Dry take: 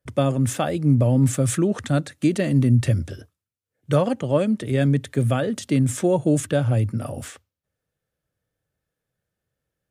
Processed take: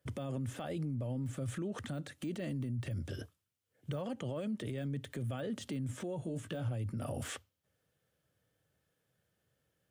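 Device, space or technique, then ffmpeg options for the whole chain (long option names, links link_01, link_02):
broadcast voice chain: -filter_complex "[0:a]highpass=74,deesser=0.9,acompressor=threshold=-36dB:ratio=3,equalizer=frequency=3100:width_type=o:width=0.22:gain=5,alimiter=level_in=9.5dB:limit=-24dB:level=0:latency=1:release=31,volume=-9.5dB,asettb=1/sr,asplit=3[link_01][link_02][link_03];[link_01]atrim=end=6.204[link_04];[link_02]atrim=start=6.2:end=6.69,asetpts=PTS-STARTPTS,afade=type=in:duration=0.004:curve=qsin,afade=type=out:start_time=0.486:duration=0.004:curve=qsin,asplit=2[link_05][link_06];[link_06]adelay=18,volume=-8dB[link_07];[link_05][link_07]amix=inputs=2:normalize=0,atrim=end_sample=21609[link_08];[link_03]atrim=start=6.686[link_09];[link_04][link_08]acrossfade=duration=0.004:curve1=hsin:curve2=qsin[link_10];[link_10][link_09]acrossfade=duration=0.004:curve1=qsin:curve2=hsin,volume=2.5dB"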